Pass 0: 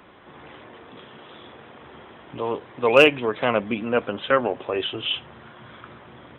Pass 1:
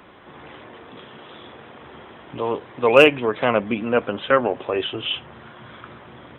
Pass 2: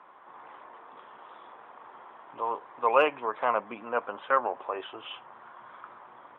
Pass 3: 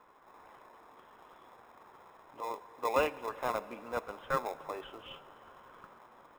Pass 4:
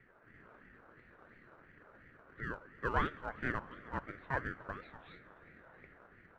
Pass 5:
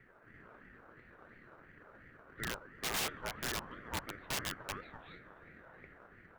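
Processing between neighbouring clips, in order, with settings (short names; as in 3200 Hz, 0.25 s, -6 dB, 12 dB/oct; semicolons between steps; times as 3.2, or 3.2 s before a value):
dynamic EQ 4600 Hz, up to -5 dB, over -41 dBFS, Q 1.2; gain +2.5 dB
band-pass 1000 Hz, Q 2.5
in parallel at -8.5 dB: sample-rate reducer 1500 Hz, jitter 0%; on the sum: reverb RT60 5.6 s, pre-delay 53 ms, DRR 16.5 dB; gain -8 dB
band-pass 810 Hz, Q 0.95; ring modulator with a swept carrier 650 Hz, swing 40%, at 2.9 Hz; gain +1.5 dB
wrapped overs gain 31 dB; gain +2 dB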